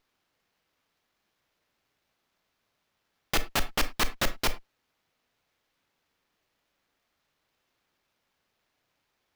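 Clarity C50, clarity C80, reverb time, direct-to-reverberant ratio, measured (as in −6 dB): 14.5 dB, 22.0 dB, non-exponential decay, 11.0 dB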